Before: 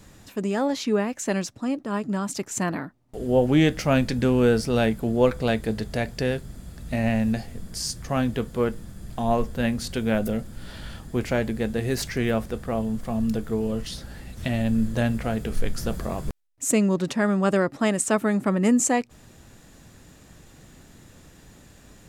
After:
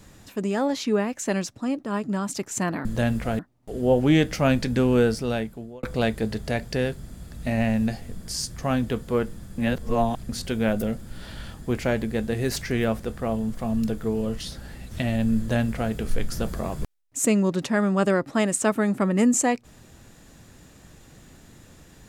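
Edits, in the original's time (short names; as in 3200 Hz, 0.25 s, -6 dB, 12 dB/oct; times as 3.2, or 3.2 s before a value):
4.43–5.29 fade out
9.04–9.75 reverse
14.84–15.38 copy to 2.85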